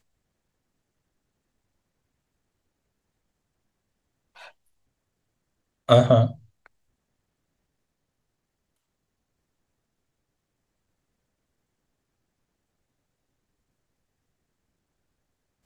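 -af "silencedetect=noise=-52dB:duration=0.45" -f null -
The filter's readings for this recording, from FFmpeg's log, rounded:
silence_start: 0.00
silence_end: 4.35 | silence_duration: 4.35
silence_start: 4.51
silence_end: 5.88 | silence_duration: 1.37
silence_start: 6.67
silence_end: 15.65 | silence_duration: 8.98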